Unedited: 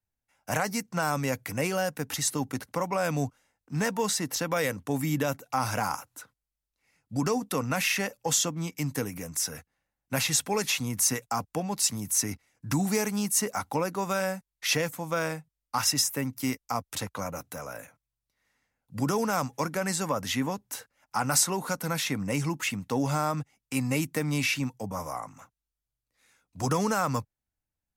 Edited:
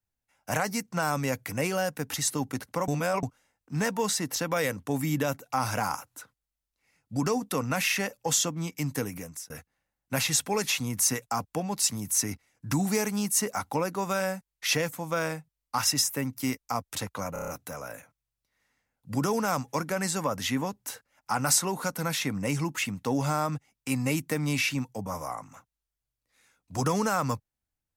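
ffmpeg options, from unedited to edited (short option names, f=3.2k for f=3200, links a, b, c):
-filter_complex "[0:a]asplit=9[a][b][c][d][e][f][g][h][i];[a]atrim=end=2.882[j];[b]atrim=start=2.878:end=3.232,asetpts=PTS-STARTPTS,areverse[k];[c]atrim=start=3.228:end=9.5,asetpts=PTS-STARTPTS,afade=t=out:st=5.932:d=0.34[l];[d]atrim=start=9.5:end=17.362,asetpts=PTS-STARTPTS,afade=t=in:d=0.004:c=hsin[m];[e]atrim=start=17.328:end=17.362[n];[f]atrim=start=17.328:end=17.362[o];[g]atrim=start=17.328:end=17.362[p];[h]atrim=start=17.328:end=17.362[q];[i]atrim=start=17.328[r];[j][k]acrossfade=d=0.004:c1=hsin:c2=hsin[s];[l][m]concat=n=2:v=0:a=1[t];[s][t]acrossfade=d=0.004:c1=hsin:c2=hsin[u];[u][n]acrossfade=d=0.004:c1=hsin:c2=hsin[v];[v][o]acrossfade=d=0.004:c1=hsin:c2=hsin[w];[w][p]acrossfade=d=0.004:c1=hsin:c2=hsin[x];[x][q]acrossfade=d=0.004:c1=hsin:c2=hsin[y];[y][r]acrossfade=d=0.004:c1=hsin:c2=hsin"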